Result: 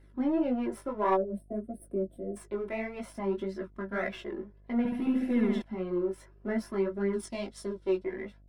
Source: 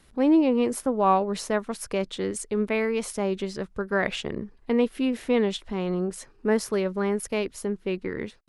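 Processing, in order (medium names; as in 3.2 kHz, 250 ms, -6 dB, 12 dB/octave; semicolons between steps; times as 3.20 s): partial rectifier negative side -7 dB; chorus 1.7 Hz, delay 15.5 ms, depth 5.6 ms; 1.04–1.55 s: gate -35 dBFS, range -26 dB; 7.13–8.04 s: high-order bell 5.6 kHz +12.5 dB; reverberation, pre-delay 3 ms, DRR 3.5 dB; 1.17–2.36 s: time-frequency box 720–8000 Hz -26 dB; 4.78–5.62 s: flutter echo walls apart 12 m, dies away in 1.2 s; mains buzz 50 Hz, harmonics 14, -47 dBFS -8 dB/octave; flange 0.57 Hz, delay 0.4 ms, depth 1.9 ms, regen -40%; saturation -7 dBFS, distortion -27 dB; trim -7.5 dB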